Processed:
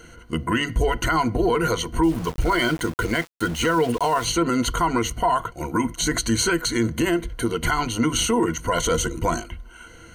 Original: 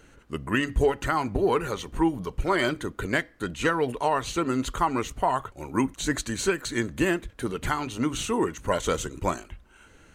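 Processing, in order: ripple EQ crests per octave 1.9, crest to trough 13 dB; limiter -18.5 dBFS, peak gain reduction 11 dB; 2.03–4.25 sample gate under -39 dBFS; gain +6.5 dB

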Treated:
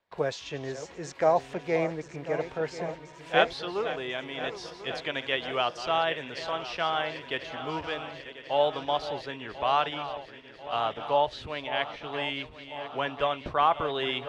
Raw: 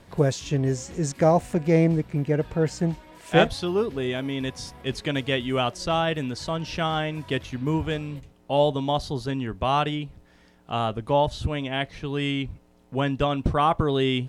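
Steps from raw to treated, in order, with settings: regenerating reverse delay 0.521 s, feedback 79%, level -12.5 dB; three-band isolator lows -17 dB, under 470 Hz, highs -19 dB, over 5000 Hz; gate with hold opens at -42 dBFS; gain -1 dB

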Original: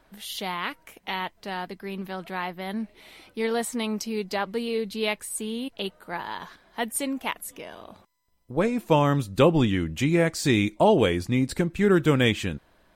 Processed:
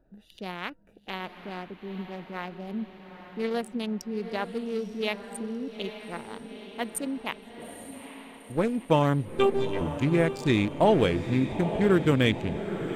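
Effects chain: Wiener smoothing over 41 samples; 9.28–9.81 robotiser 395 Hz; on a send: diffused feedback echo 0.885 s, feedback 55%, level -10 dB; on the sum: gain -1.5 dB

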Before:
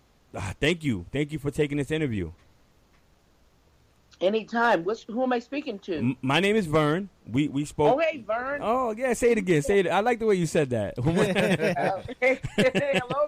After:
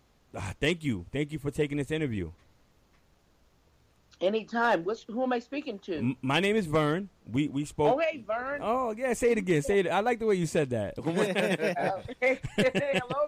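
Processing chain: 10.99–11.81 HPF 180 Hz 24 dB/oct; gain -3.5 dB

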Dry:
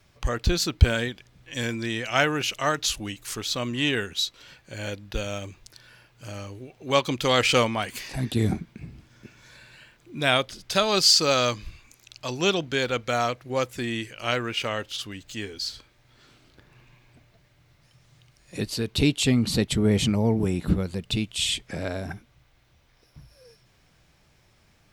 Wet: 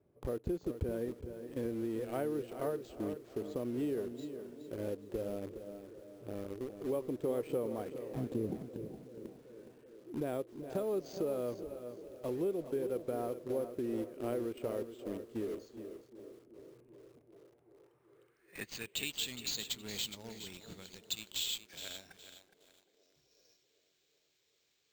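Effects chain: band-pass sweep 420 Hz -> 4000 Hz, 17.12–19.31; careless resampling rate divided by 4×, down none, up hold; in parallel at -5 dB: bit-crush 7-bit; on the sum: low shelf 420 Hz +12 dB; compressor 4:1, threshold -29 dBFS, peak gain reduction 14.5 dB; narrowing echo 0.383 s, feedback 76%, band-pass 420 Hz, level -14 dB; lo-fi delay 0.416 s, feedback 35%, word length 9-bit, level -10 dB; gain -5.5 dB

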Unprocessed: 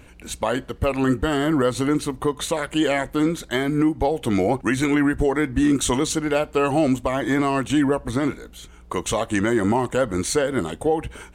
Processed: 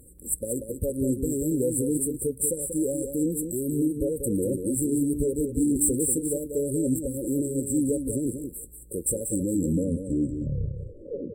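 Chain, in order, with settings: tape stop at the end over 2.04 s; pre-emphasis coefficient 0.8; added harmonics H 5 -9 dB, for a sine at -12.5 dBFS; brick-wall FIR band-stop 580–7500 Hz; echo 0.187 s -7.5 dB

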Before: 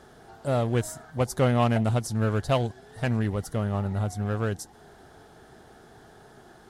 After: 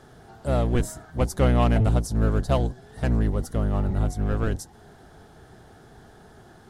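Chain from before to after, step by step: octaver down 1 oct, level +3 dB; 1.91–3.71 dynamic EQ 2400 Hz, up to -6 dB, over -48 dBFS, Q 1.5

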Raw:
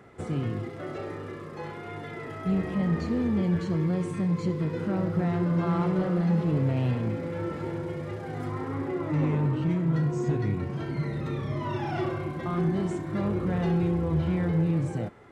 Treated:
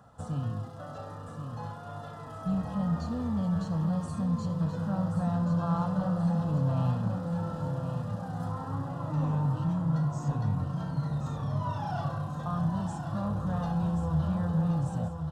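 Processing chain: fixed phaser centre 900 Hz, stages 4; feedback echo 1.078 s, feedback 50%, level -7.5 dB

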